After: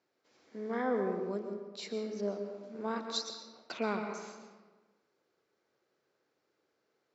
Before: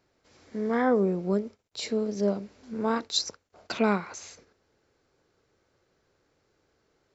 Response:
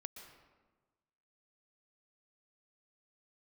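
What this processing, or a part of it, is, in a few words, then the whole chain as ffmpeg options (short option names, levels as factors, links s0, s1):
supermarket ceiling speaker: -filter_complex "[0:a]highpass=230,lowpass=6800[s0];[1:a]atrim=start_sample=2205[s1];[s0][s1]afir=irnorm=-1:irlink=0,volume=0.708"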